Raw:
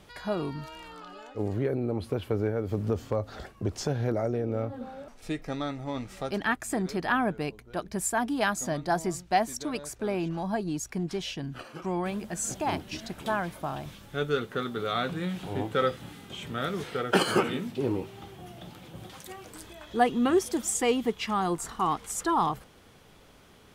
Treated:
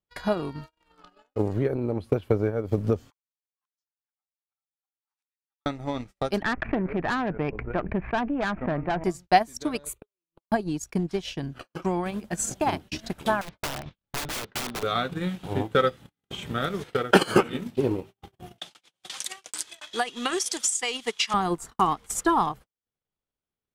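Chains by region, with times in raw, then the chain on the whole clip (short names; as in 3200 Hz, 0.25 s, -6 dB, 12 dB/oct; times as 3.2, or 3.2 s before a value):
3.1–5.66 steep high-pass 790 Hz 96 dB/oct + flipped gate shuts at -44 dBFS, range -24 dB
6.42–9.04 steep low-pass 2600 Hz 72 dB/oct + tube stage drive 25 dB, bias 0.45 + fast leveller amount 70%
9.85–10.52 flipped gate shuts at -24 dBFS, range -24 dB + high shelf 3900 Hz +8 dB + fixed phaser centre 1100 Hz, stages 8
13.41–14.83 LPF 4700 Hz 24 dB/oct + wrapped overs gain 29.5 dB
18.58–21.34 weighting filter ITU-R 468 + compressor 10:1, threshold -25 dBFS
whole clip: transient shaper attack +6 dB, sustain -10 dB; low shelf 61 Hz +5 dB; gate -42 dBFS, range -40 dB; gain +1.5 dB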